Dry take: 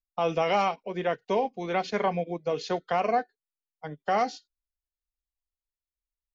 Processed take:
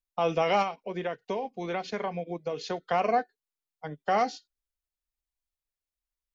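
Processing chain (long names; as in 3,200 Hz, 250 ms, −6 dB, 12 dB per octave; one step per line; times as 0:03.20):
0:00.62–0:02.83: downward compressor 4 to 1, threshold −29 dBFS, peak gain reduction 7.5 dB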